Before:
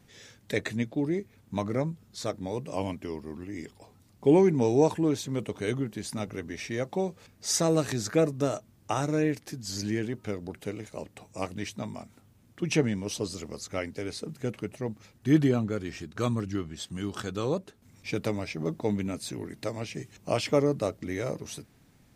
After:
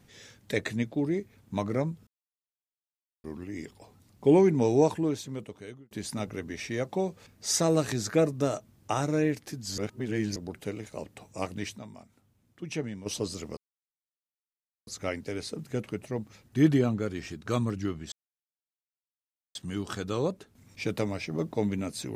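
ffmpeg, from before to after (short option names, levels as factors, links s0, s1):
-filter_complex "[0:a]asplit=10[s0][s1][s2][s3][s4][s5][s6][s7][s8][s9];[s0]atrim=end=2.07,asetpts=PTS-STARTPTS,afade=t=out:st=2.066:d=0.004:c=hsin[s10];[s1]atrim=start=2.07:end=3.24,asetpts=PTS-STARTPTS,volume=0[s11];[s2]atrim=start=3.24:end=5.91,asetpts=PTS-STARTPTS,afade=t=in:d=0.004:c=hsin,afade=t=out:st=1.55:d=1.12[s12];[s3]atrim=start=5.91:end=9.782,asetpts=PTS-STARTPTS,afade=t=in:d=0.004:c=hsin[s13];[s4]atrim=start=9.778:end=10.362,asetpts=PTS-STARTPTS,areverse[s14];[s5]atrim=start=10.358:end=11.782[s15];[s6]atrim=start=11.778:end=13.062,asetpts=PTS-STARTPTS,volume=0.376[s16];[s7]atrim=start=13.058:end=13.57,asetpts=PTS-STARTPTS,afade=t=out:st=0.508:d=0.004:c=hsin,apad=pad_dur=1.3[s17];[s8]atrim=start=13.57:end=16.82,asetpts=PTS-STARTPTS,afade=t=in:d=0.004:c=hsin,afade=t=out:st=3.246:d=0.004:c=hsin,apad=pad_dur=1.43[s18];[s9]atrim=start=16.82,asetpts=PTS-STARTPTS,afade=t=in:d=0.004:c=hsin[s19];[s10][s11][s12][s13]concat=n=4:v=0:a=1[s20];[s20][s14]acrossfade=d=0.004:c1=hsin:c2=hsin[s21];[s21][s15]acrossfade=d=0.004:c1=hsin:c2=hsin[s22];[s22][s16]acrossfade=d=0.004:c1=hsin:c2=hsin[s23];[s17][s18][s19]concat=n=3:v=0:a=1[s24];[s23][s24]acrossfade=d=0.004:c1=hsin:c2=hsin"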